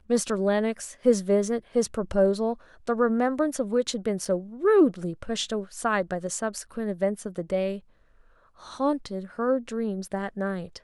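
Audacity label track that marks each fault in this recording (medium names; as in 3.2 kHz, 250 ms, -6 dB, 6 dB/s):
4.250000	4.250000	dropout 3.9 ms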